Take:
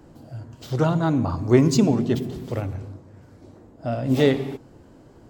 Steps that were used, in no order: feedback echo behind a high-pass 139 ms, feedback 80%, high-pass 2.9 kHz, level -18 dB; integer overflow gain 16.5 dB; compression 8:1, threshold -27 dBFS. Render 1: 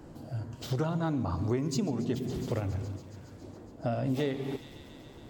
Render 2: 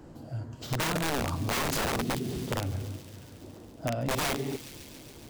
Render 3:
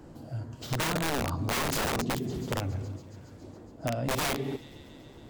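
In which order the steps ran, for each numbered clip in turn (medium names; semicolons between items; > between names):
feedback echo behind a high-pass > compression > integer overflow; integer overflow > feedback echo behind a high-pass > compression; feedback echo behind a high-pass > integer overflow > compression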